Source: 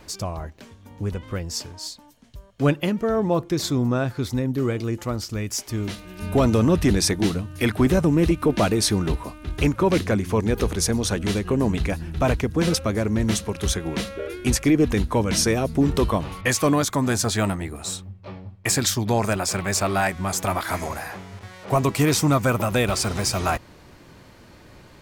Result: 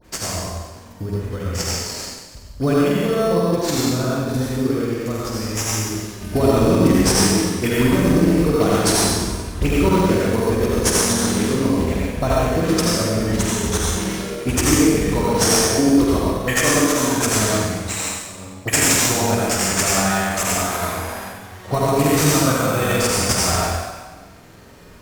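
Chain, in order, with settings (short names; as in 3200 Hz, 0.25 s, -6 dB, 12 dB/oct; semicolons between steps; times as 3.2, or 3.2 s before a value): high shelf 4600 Hz +10 dB; notch 850 Hz, Q 25; dispersion highs, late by 43 ms, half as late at 1900 Hz; on a send: flutter echo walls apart 8 m, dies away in 0.77 s; on the sum: transient shaper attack +7 dB, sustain -11 dB; reverb RT60 1.4 s, pre-delay 70 ms, DRR -5 dB; in parallel at -3.5 dB: sample-and-hold 9×; on the sum: gain -10 dB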